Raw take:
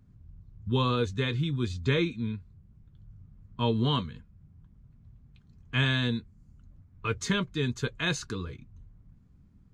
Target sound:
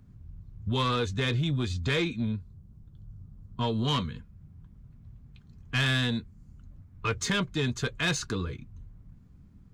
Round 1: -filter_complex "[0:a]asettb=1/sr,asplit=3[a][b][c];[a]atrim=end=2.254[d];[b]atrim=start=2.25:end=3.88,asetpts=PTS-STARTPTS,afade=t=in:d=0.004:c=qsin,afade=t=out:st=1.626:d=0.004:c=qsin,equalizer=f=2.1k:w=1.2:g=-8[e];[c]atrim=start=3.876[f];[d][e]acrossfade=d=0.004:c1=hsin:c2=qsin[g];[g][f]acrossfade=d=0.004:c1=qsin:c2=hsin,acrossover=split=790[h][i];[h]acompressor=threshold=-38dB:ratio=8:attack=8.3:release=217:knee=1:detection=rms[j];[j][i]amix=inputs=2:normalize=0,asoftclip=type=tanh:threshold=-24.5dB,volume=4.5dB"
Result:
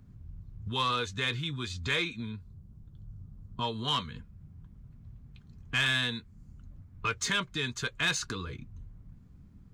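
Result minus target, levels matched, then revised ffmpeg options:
compressor: peak gain reduction +10 dB
-filter_complex "[0:a]asettb=1/sr,asplit=3[a][b][c];[a]atrim=end=2.254[d];[b]atrim=start=2.25:end=3.88,asetpts=PTS-STARTPTS,afade=t=in:d=0.004:c=qsin,afade=t=out:st=1.626:d=0.004:c=qsin,equalizer=f=2.1k:w=1.2:g=-8[e];[c]atrim=start=3.876[f];[d][e]acrossfade=d=0.004:c1=hsin:c2=qsin[g];[g][f]acrossfade=d=0.004:c1=qsin:c2=hsin,acrossover=split=790[h][i];[h]acompressor=threshold=-26.5dB:ratio=8:attack=8.3:release=217:knee=1:detection=rms[j];[j][i]amix=inputs=2:normalize=0,asoftclip=type=tanh:threshold=-24.5dB,volume=4.5dB"

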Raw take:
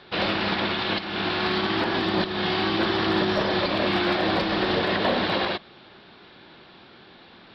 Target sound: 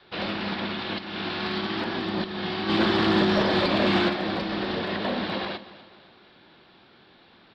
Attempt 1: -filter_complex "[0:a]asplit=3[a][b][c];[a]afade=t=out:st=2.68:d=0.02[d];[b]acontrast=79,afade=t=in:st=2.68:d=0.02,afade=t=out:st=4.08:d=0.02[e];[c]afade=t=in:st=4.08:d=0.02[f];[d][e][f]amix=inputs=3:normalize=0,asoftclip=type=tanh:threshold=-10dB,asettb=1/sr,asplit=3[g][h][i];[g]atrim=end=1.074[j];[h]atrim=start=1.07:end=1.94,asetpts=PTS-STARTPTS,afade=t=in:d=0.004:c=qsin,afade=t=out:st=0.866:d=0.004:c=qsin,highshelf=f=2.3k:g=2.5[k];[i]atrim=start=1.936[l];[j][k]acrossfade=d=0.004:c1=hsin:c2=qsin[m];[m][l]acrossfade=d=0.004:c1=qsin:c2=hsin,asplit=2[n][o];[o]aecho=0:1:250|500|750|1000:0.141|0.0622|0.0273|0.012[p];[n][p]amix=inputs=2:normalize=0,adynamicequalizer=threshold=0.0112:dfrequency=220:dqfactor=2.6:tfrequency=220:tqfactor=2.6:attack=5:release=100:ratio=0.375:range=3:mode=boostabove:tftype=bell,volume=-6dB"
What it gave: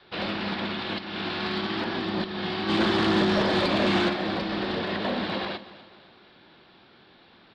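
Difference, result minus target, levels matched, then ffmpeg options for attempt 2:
soft clip: distortion +11 dB
-filter_complex "[0:a]asplit=3[a][b][c];[a]afade=t=out:st=2.68:d=0.02[d];[b]acontrast=79,afade=t=in:st=2.68:d=0.02,afade=t=out:st=4.08:d=0.02[e];[c]afade=t=in:st=4.08:d=0.02[f];[d][e][f]amix=inputs=3:normalize=0,asoftclip=type=tanh:threshold=-3.5dB,asettb=1/sr,asplit=3[g][h][i];[g]atrim=end=1.074[j];[h]atrim=start=1.07:end=1.94,asetpts=PTS-STARTPTS,afade=t=in:d=0.004:c=qsin,afade=t=out:st=0.866:d=0.004:c=qsin,highshelf=f=2.3k:g=2.5[k];[i]atrim=start=1.936[l];[j][k]acrossfade=d=0.004:c1=hsin:c2=qsin[m];[m][l]acrossfade=d=0.004:c1=qsin:c2=hsin,asplit=2[n][o];[o]aecho=0:1:250|500|750|1000:0.141|0.0622|0.0273|0.012[p];[n][p]amix=inputs=2:normalize=0,adynamicequalizer=threshold=0.0112:dfrequency=220:dqfactor=2.6:tfrequency=220:tqfactor=2.6:attack=5:release=100:ratio=0.375:range=3:mode=boostabove:tftype=bell,volume=-6dB"

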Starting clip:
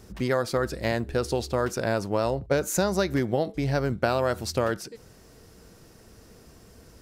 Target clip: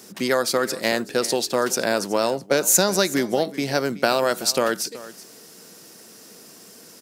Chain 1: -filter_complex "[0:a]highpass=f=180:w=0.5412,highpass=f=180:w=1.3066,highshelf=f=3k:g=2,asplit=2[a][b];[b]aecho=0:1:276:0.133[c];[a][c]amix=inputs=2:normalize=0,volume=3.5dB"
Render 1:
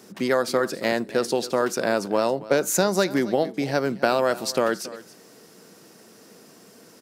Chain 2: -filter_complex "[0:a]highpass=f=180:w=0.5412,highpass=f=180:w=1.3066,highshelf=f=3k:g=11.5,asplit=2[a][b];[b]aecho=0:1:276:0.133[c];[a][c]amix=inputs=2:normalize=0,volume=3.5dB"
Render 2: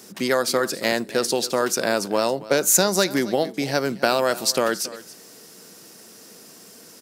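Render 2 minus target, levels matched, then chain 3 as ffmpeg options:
echo 99 ms early
-filter_complex "[0:a]highpass=f=180:w=0.5412,highpass=f=180:w=1.3066,highshelf=f=3k:g=11.5,asplit=2[a][b];[b]aecho=0:1:375:0.133[c];[a][c]amix=inputs=2:normalize=0,volume=3.5dB"

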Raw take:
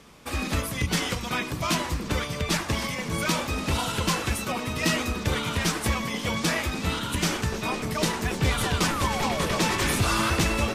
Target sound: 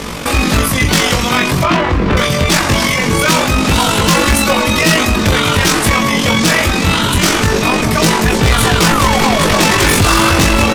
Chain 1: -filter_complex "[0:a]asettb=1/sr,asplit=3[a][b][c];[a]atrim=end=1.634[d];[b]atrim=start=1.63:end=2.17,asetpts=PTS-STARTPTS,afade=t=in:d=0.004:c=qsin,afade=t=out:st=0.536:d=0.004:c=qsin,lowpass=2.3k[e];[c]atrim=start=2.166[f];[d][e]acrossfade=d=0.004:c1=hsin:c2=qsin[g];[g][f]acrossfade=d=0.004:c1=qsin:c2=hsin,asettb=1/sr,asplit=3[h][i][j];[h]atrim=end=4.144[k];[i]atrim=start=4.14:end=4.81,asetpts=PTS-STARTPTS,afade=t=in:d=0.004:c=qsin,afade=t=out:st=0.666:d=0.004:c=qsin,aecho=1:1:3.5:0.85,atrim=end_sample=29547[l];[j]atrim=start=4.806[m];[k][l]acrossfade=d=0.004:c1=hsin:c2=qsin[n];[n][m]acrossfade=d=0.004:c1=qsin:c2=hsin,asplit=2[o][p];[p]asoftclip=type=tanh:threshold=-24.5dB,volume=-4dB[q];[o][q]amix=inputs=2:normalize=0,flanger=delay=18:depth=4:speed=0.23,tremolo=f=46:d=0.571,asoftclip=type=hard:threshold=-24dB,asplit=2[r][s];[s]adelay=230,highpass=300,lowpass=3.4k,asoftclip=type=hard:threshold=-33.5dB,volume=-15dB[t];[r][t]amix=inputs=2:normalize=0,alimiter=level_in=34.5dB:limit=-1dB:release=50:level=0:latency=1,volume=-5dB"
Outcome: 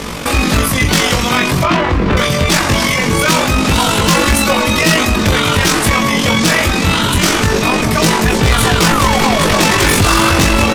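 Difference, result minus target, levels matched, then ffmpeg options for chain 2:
soft clip: distortion +11 dB
-filter_complex "[0:a]asettb=1/sr,asplit=3[a][b][c];[a]atrim=end=1.634[d];[b]atrim=start=1.63:end=2.17,asetpts=PTS-STARTPTS,afade=t=in:d=0.004:c=qsin,afade=t=out:st=0.536:d=0.004:c=qsin,lowpass=2.3k[e];[c]atrim=start=2.166[f];[d][e]acrossfade=d=0.004:c1=hsin:c2=qsin[g];[g][f]acrossfade=d=0.004:c1=qsin:c2=hsin,asettb=1/sr,asplit=3[h][i][j];[h]atrim=end=4.144[k];[i]atrim=start=4.14:end=4.81,asetpts=PTS-STARTPTS,afade=t=in:d=0.004:c=qsin,afade=t=out:st=0.666:d=0.004:c=qsin,aecho=1:1:3.5:0.85,atrim=end_sample=29547[l];[j]atrim=start=4.806[m];[k][l]acrossfade=d=0.004:c1=hsin:c2=qsin[n];[n][m]acrossfade=d=0.004:c1=qsin:c2=hsin,asplit=2[o][p];[p]asoftclip=type=tanh:threshold=-16dB,volume=-4dB[q];[o][q]amix=inputs=2:normalize=0,flanger=delay=18:depth=4:speed=0.23,tremolo=f=46:d=0.571,asoftclip=type=hard:threshold=-24dB,asplit=2[r][s];[s]adelay=230,highpass=300,lowpass=3.4k,asoftclip=type=hard:threshold=-33.5dB,volume=-15dB[t];[r][t]amix=inputs=2:normalize=0,alimiter=level_in=34.5dB:limit=-1dB:release=50:level=0:latency=1,volume=-5dB"

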